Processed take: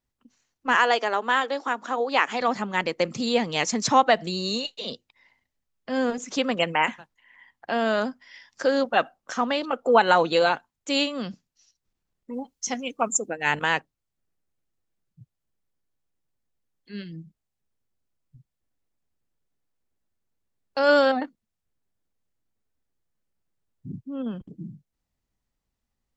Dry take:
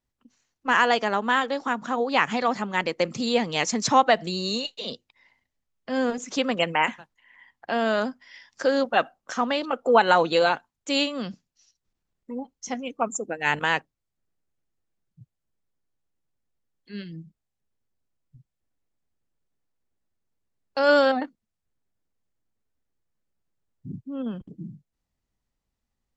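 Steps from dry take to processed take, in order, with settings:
0:00.76–0:02.41: high-pass filter 290 Hz 24 dB per octave
0:12.33–0:13.29: high-shelf EQ 2,700 Hz +9 dB

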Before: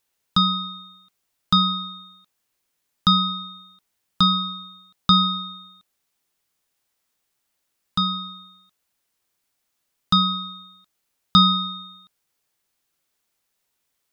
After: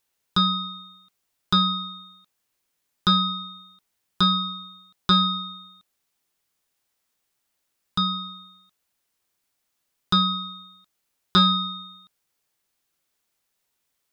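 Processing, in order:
saturating transformer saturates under 540 Hz
level −1 dB

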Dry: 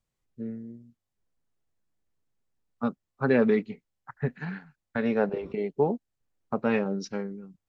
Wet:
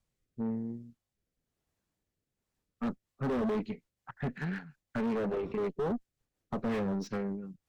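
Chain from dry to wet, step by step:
rotating-speaker cabinet horn 1 Hz, later 5.5 Hz, at 0:02.26
tube saturation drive 34 dB, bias 0.35
slew-rate limiting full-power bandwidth 14 Hz
level +5.5 dB

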